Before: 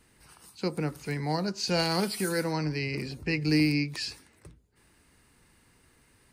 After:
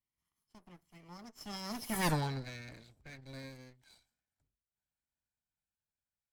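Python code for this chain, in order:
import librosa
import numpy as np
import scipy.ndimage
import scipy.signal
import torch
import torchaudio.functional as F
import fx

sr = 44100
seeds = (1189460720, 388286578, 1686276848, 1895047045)

y = fx.lower_of_two(x, sr, delay_ms=1.1)
y = fx.doppler_pass(y, sr, speed_mps=48, closest_m=3.1, pass_at_s=2.08)
y = fx.leveller(y, sr, passes=1)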